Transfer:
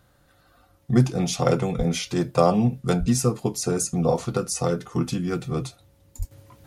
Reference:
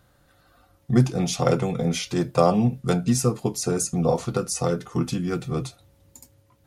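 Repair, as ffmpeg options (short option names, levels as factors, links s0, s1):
-filter_complex "[0:a]asplit=3[s0][s1][s2];[s0]afade=t=out:st=1.77:d=0.02[s3];[s1]highpass=f=140:w=0.5412,highpass=f=140:w=1.3066,afade=t=in:st=1.77:d=0.02,afade=t=out:st=1.89:d=0.02[s4];[s2]afade=t=in:st=1.89:d=0.02[s5];[s3][s4][s5]amix=inputs=3:normalize=0,asplit=3[s6][s7][s8];[s6]afade=t=out:st=2.99:d=0.02[s9];[s7]highpass=f=140:w=0.5412,highpass=f=140:w=1.3066,afade=t=in:st=2.99:d=0.02,afade=t=out:st=3.11:d=0.02[s10];[s8]afade=t=in:st=3.11:d=0.02[s11];[s9][s10][s11]amix=inputs=3:normalize=0,asplit=3[s12][s13][s14];[s12]afade=t=out:st=6.18:d=0.02[s15];[s13]highpass=f=140:w=0.5412,highpass=f=140:w=1.3066,afade=t=in:st=6.18:d=0.02,afade=t=out:st=6.3:d=0.02[s16];[s14]afade=t=in:st=6.3:d=0.02[s17];[s15][s16][s17]amix=inputs=3:normalize=0,asetnsamples=n=441:p=0,asendcmd='6.31 volume volume -10.5dB',volume=1"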